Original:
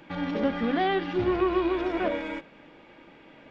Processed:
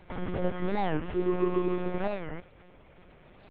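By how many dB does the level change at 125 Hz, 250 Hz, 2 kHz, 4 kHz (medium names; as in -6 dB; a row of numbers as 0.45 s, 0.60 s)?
+3.0 dB, -4.0 dB, -8.0 dB, -10.5 dB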